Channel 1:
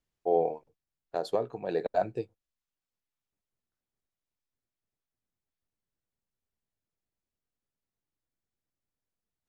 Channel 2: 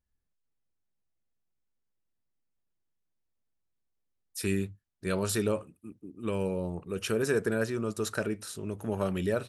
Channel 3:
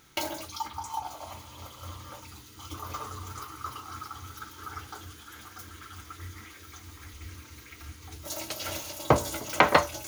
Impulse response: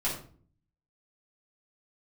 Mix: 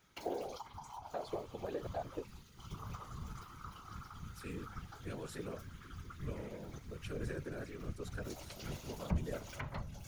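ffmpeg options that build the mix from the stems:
-filter_complex "[0:a]acompressor=threshold=-34dB:ratio=6,volume=2.5dB[a];[1:a]volume=-9dB[b];[2:a]asubboost=boost=8:cutoff=78,acrossover=split=150[c][d];[d]acompressor=threshold=-35dB:ratio=5[e];[c][e]amix=inputs=2:normalize=0,volume=-4dB[f];[a][b][f]amix=inputs=3:normalize=0,highshelf=f=6.7k:g=-8.5,afftfilt=real='hypot(re,im)*cos(2*PI*random(0))':imag='hypot(re,im)*sin(2*PI*random(1))':win_size=512:overlap=0.75"

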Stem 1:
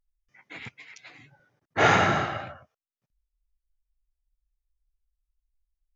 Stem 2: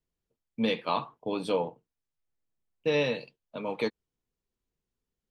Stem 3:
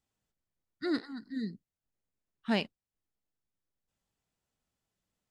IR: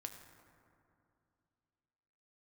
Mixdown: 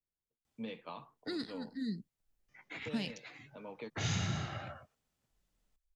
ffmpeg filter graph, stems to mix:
-filter_complex "[0:a]acrossover=split=210|3000[a][b][c];[b]acompressor=threshold=-32dB:ratio=6[d];[a][d][c]amix=inputs=3:normalize=0,adelay=2200,volume=-3dB[e];[1:a]lowpass=3.1k,volume=-13dB[f];[2:a]alimiter=level_in=0.5dB:limit=-24dB:level=0:latency=1:release=29,volume=-0.5dB,adelay=450,volume=2dB[g];[e][f][g]amix=inputs=3:normalize=0,acrossover=split=210|3000[h][i][j];[i]acompressor=threshold=-42dB:ratio=6[k];[h][k][j]amix=inputs=3:normalize=0"

